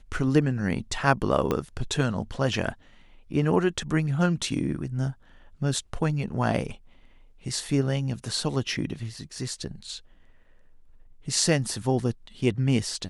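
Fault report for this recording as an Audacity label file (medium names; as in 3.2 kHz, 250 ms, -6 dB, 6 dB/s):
1.510000	1.510000	pop -12 dBFS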